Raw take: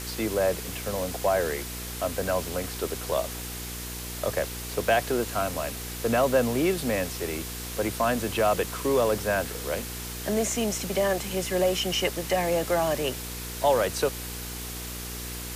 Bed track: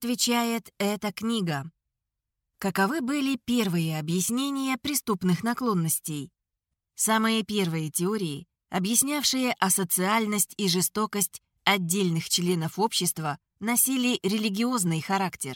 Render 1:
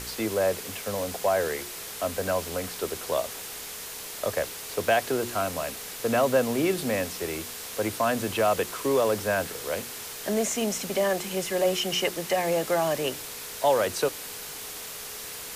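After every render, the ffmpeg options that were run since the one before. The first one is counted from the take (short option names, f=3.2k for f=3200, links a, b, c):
-af "bandreject=f=60:t=h:w=4,bandreject=f=120:t=h:w=4,bandreject=f=180:t=h:w=4,bandreject=f=240:t=h:w=4,bandreject=f=300:t=h:w=4,bandreject=f=360:t=h:w=4"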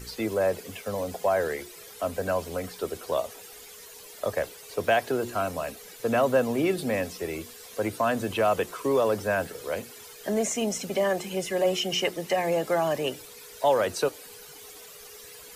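-af "afftdn=nr=13:nf=-39"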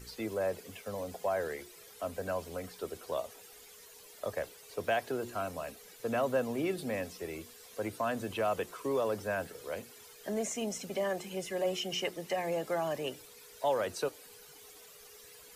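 -af "volume=-8dB"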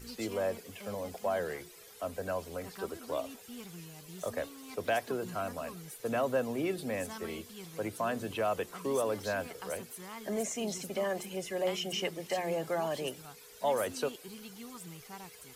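-filter_complex "[1:a]volume=-22dB[a];[0:a][a]amix=inputs=2:normalize=0"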